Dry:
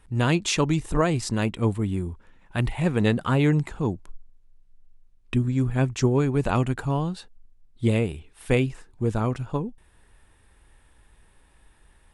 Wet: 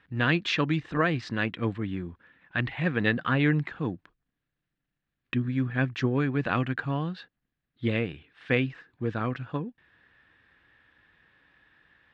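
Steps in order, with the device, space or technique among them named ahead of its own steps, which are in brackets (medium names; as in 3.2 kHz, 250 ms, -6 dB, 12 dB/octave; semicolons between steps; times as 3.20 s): kitchen radio (cabinet simulation 160–3900 Hz, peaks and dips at 210 Hz -5 dB, 400 Hz -8 dB, 620 Hz -5 dB, 890 Hz -8 dB, 1.7 kHz +8 dB)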